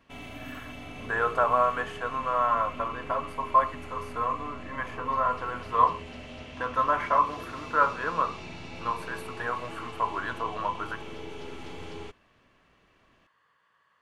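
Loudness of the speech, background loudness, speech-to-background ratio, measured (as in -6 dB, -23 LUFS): -28.5 LUFS, -42.0 LUFS, 13.5 dB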